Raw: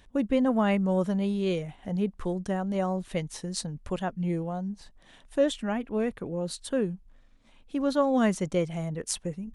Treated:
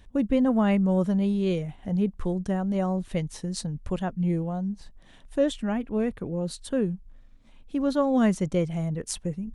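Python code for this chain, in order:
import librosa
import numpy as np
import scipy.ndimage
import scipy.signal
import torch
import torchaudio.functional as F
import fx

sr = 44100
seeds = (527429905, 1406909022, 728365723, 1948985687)

y = fx.low_shelf(x, sr, hz=250.0, db=8.5)
y = y * 10.0 ** (-1.5 / 20.0)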